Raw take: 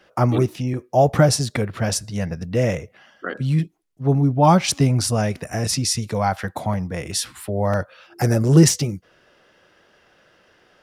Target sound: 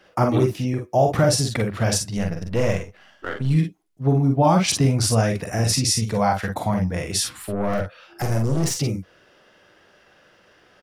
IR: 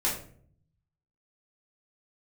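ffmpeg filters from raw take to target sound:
-filter_complex "[0:a]asettb=1/sr,asplit=3[a][b][c];[a]atrim=end=2.174[d];[b]atrim=start=2.17:end=3.51,asetpts=PTS-STARTPTS,afade=t=in:d=0.004:c=qsin,afade=t=out:st=1.336:d=0.004:c=qsin,aeval=exprs='if(lt(val(0),0),0.447*val(0),val(0))':c=same[e];[c]atrim=start=3.506[f];[d][e]acrossfade=d=0.004:c1=hsin:c2=qsin[g];[g][f]acrossfade=d=0.004:c1=qsin:c2=hsin,alimiter=limit=-9dB:level=0:latency=1:release=203,asettb=1/sr,asplit=3[h][i][j];[h]atrim=end=7.374[k];[i]atrim=start=7.37:end=8.72,asetpts=PTS-STARTPTS,afade=t=in:d=0.004:c=qsin,afade=t=out:st=1.346:d=0.004:c=qsin,aeval=exprs='(tanh(8.91*val(0)+0.4)-tanh(0.4))/8.91':c=same[l];[j]atrim=start=8.716[m];[k][l]acrossfade=d=0.004:c1=hsin:c2=qsin[n];[n][m]acrossfade=d=0.004:c1=qsin:c2=hsin,asplit=2[o][p];[p]aecho=0:1:44|54:0.501|0.398[q];[o][q]amix=inputs=2:normalize=0"

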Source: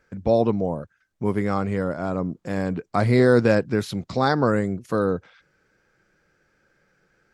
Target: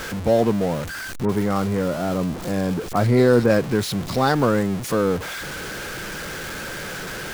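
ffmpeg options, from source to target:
-filter_complex "[0:a]aeval=exprs='val(0)+0.5*0.0531*sgn(val(0))':c=same,asettb=1/sr,asplit=3[a][b][c];[a]atrim=end=1.254[d];[b]atrim=start=1.25:end=3.5,asetpts=PTS-STARTPTS,afade=t=in:d=0.004:c=qsin,afade=t=out:st=2.246:d=0.004:c=qsin,acrossover=split=2000[e][f];[f]adelay=40[g];[e][g]amix=inputs=2:normalize=0,atrim=end_sample=99225[h];[c]atrim=start=3.496[i];[d][h]acrossfade=d=0.004:c1=hsin:c2=qsin[j];[j][i]acrossfade=d=0.004:c1=qsin:c2=hsin"

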